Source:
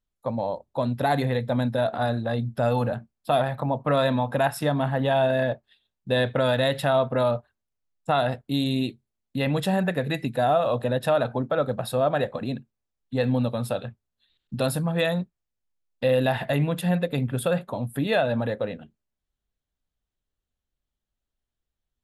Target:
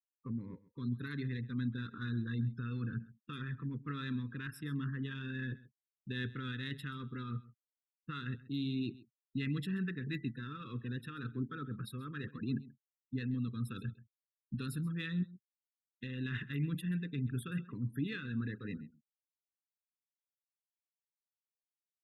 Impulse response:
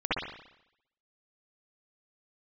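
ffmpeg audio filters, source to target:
-filter_complex "[0:a]afftfilt=real='re*gte(hypot(re,im),0.0141)':imag='im*gte(hypot(re,im),0.0141)':win_size=1024:overlap=0.75,areverse,acompressor=threshold=-29dB:ratio=16,areverse,alimiter=level_in=2.5dB:limit=-24dB:level=0:latency=1:release=477,volume=-2.5dB,asplit=2[link_01][link_02];[link_02]adynamicsmooth=sensitivity=4:basefreq=3800,volume=-1dB[link_03];[link_01][link_03]amix=inputs=2:normalize=0,asuperstop=centerf=700:order=8:qfactor=0.81,aecho=1:1:132:0.106,volume=-4.5dB"

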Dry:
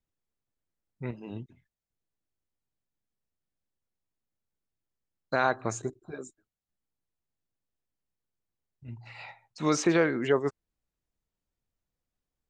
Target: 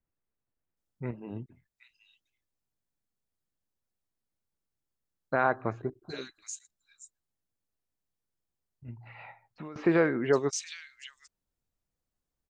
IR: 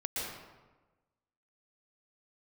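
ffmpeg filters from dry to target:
-filter_complex "[0:a]asettb=1/sr,asplit=3[link_01][link_02][link_03];[link_01]atrim=end=8.904[link_04];[link_02]atrim=start=8.9:end=9.76,asetpts=PTS-STARTPTS,afade=type=in:duration=0.004:curve=qsin,afade=type=out:start_time=0.856:duration=0.004:curve=qsin,acompressor=threshold=-40dB:ratio=12[link_05];[link_03]atrim=start=9.756[link_06];[link_04][link_05]acrossfade=duration=0.004:curve1=hsin:curve2=qsin[link_07];[link_07][link_06]acrossfade=duration=0.004:curve1=qsin:curve2=hsin,acrossover=split=2700[link_08][link_09];[link_09]adelay=770[link_10];[link_08][link_10]amix=inputs=2:normalize=0"

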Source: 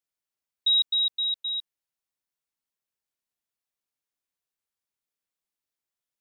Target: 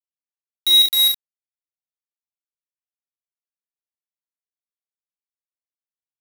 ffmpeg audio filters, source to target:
ffmpeg -i in.wav -af "aeval=exprs='val(0)+0.5*0.0126*sgn(val(0))':channel_layout=same,afftfilt=real='re*gte(hypot(re,im),0.1)':imag='im*gte(hypot(re,im),0.1)':win_size=1024:overlap=0.75,lowpass=3600,aecho=1:1:1.4:0.89,acrusher=bits=3:mix=0:aa=0.000001,aecho=1:1:39|67:0.631|0.501,volume=3dB" out.wav

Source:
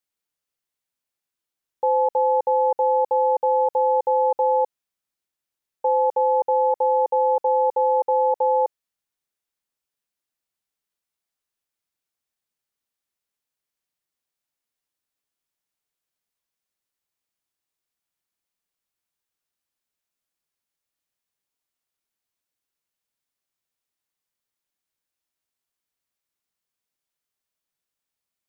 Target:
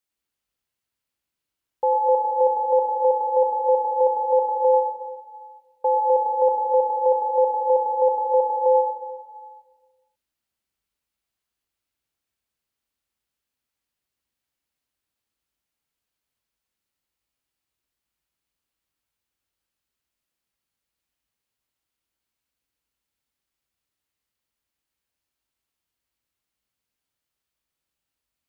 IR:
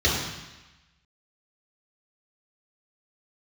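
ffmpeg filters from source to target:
-filter_complex "[0:a]asplit=2[link_01][link_02];[1:a]atrim=start_sample=2205,asetrate=31311,aresample=44100,adelay=93[link_03];[link_02][link_03]afir=irnorm=-1:irlink=0,volume=-19.5dB[link_04];[link_01][link_04]amix=inputs=2:normalize=0"

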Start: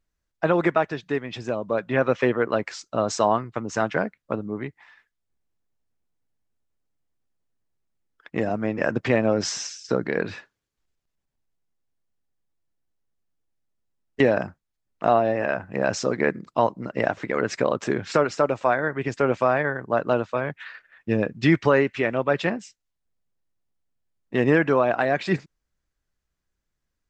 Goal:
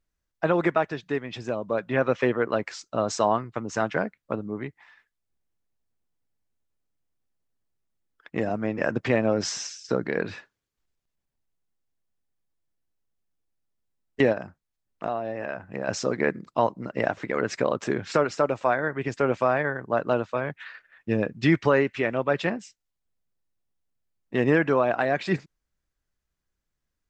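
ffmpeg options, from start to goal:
ffmpeg -i in.wav -filter_complex "[0:a]asplit=3[link_01][link_02][link_03];[link_01]afade=type=out:start_time=14.32:duration=0.02[link_04];[link_02]acompressor=threshold=-30dB:ratio=2,afade=type=in:start_time=14.32:duration=0.02,afade=type=out:start_time=15.87:duration=0.02[link_05];[link_03]afade=type=in:start_time=15.87:duration=0.02[link_06];[link_04][link_05][link_06]amix=inputs=3:normalize=0,volume=-2dB" out.wav

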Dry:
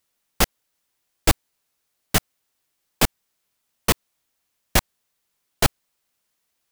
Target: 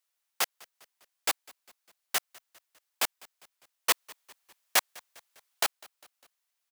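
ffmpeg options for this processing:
ffmpeg -i in.wav -filter_complex "[0:a]asettb=1/sr,asplit=3[link_01][link_02][link_03];[link_01]atrim=end=3.894[link_04];[link_02]atrim=start=3.89:end=5.63,asetpts=PTS-STARTPTS,afade=type=in:duration=0.004:curve=qsin,afade=type=out:start_time=1.736:duration=0.004:curve=qsin,acontrast=39[link_05];[link_03]atrim=start=5.626[link_06];[link_04][link_05]acrossfade=duration=0.004:curve1=hsin:curve2=qsin[link_07];[link_07][link_06]acrossfade=duration=0.004:curve1=qsin:curve2=hsin,highpass=750,asplit=2[link_08][link_09];[link_09]asplit=3[link_10][link_11][link_12];[link_10]adelay=201,afreqshift=-42,volume=-24dB[link_13];[link_11]adelay=402,afreqshift=-84,volume=-29.5dB[link_14];[link_12]adelay=603,afreqshift=-126,volume=-35dB[link_15];[link_13][link_14][link_15]amix=inputs=3:normalize=0[link_16];[link_08][link_16]amix=inputs=2:normalize=0,volume=-7dB" out.wav

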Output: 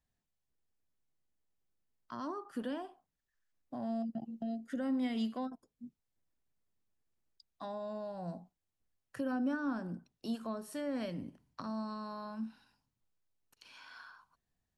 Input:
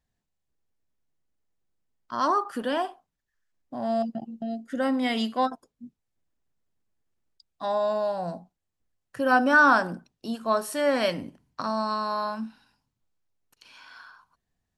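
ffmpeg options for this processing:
ffmpeg -i in.wav -filter_complex "[0:a]acrossover=split=330[link_01][link_02];[link_02]acompressor=threshold=-39dB:ratio=5[link_03];[link_01][link_03]amix=inputs=2:normalize=0,volume=-5dB" out.wav

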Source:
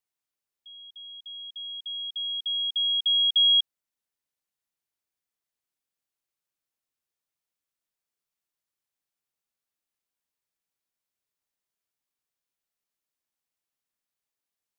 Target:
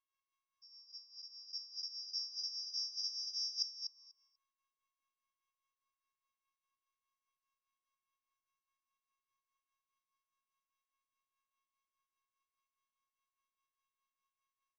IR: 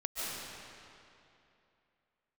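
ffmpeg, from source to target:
-filter_complex "[0:a]afftfilt=real='re':imag='-im':win_size=2048:overlap=0.75,asplit=2[link_01][link_02];[link_02]aeval=exprs='sgn(val(0))*max(abs(val(0))-0.00282,0)':channel_layout=same,volume=-8.5dB[link_03];[link_01][link_03]amix=inputs=2:normalize=0,aeval=exprs='val(0)*sin(2*PI*140*n/s)':channel_layout=same,adynamicsmooth=sensitivity=7.5:basefreq=3100,volume=26.5dB,asoftclip=hard,volume=-26.5dB,afftfilt=real='hypot(re,im)*cos(PI*b)':imag='0':win_size=512:overlap=0.75,asetrate=70004,aresample=44100,atempo=0.629961,areverse,acompressor=threshold=-49dB:ratio=10,areverse,firequalizer=gain_entry='entry(370,0);entry(530,-13);entry(750,-12);entry(1100,11);entry(1500,-6);entry(2100,-1);entry(3000,-1);entry(4300,-10);entry(6100,5);entry(8600,-30)':delay=0.05:min_phase=1,aecho=1:1:244|488|732:0.447|0.0759|0.0129,tremolo=f=4.9:d=0.64,equalizer=frequency=3200:width_type=o:width=2.5:gain=9.5,volume=10dB"

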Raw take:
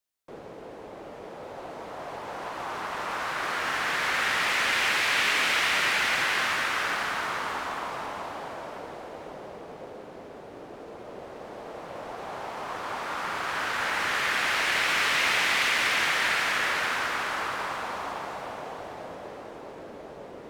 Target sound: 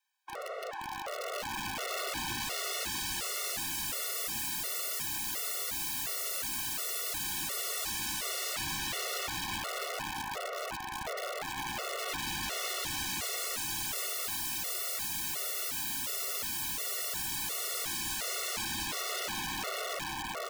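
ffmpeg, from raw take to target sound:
ffmpeg -i in.wav -filter_complex "[0:a]equalizer=frequency=1500:width=0.34:gain=11.5,asplit=2[link_01][link_02];[link_02]adelay=919,lowpass=frequency=5000:poles=1,volume=-3dB,asplit=2[link_03][link_04];[link_04]adelay=919,lowpass=frequency=5000:poles=1,volume=0.29,asplit=2[link_05][link_06];[link_06]adelay=919,lowpass=frequency=5000:poles=1,volume=0.29,asplit=2[link_07][link_08];[link_08]adelay=919,lowpass=frequency=5000:poles=1,volume=0.29[link_09];[link_03][link_05][link_07][link_09]amix=inputs=4:normalize=0[link_10];[link_01][link_10]amix=inputs=2:normalize=0,asoftclip=type=tanh:threshold=-12dB,highpass=frequency=530:width=0.5412,highpass=frequency=530:width=1.3066,bandreject=frequency=720:width=24,asplit=2[link_11][link_12];[link_12]acompressor=threshold=-33dB:ratio=16,volume=1.5dB[link_13];[link_11][link_13]amix=inputs=2:normalize=0,aeval=exprs='(mod(13.3*val(0)+1,2)-1)/13.3':channel_layout=same,afftfilt=real='re*gt(sin(2*PI*1.4*pts/sr)*(1-2*mod(floor(b*sr/1024/370),2)),0)':imag='im*gt(sin(2*PI*1.4*pts/sr)*(1-2*mod(floor(b*sr/1024/370),2)),0)':win_size=1024:overlap=0.75,volume=-5dB" out.wav

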